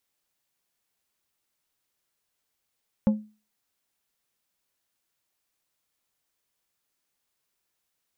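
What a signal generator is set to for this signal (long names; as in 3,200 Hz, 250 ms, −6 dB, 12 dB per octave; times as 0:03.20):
struck glass plate, lowest mode 213 Hz, decay 0.33 s, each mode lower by 10 dB, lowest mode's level −14 dB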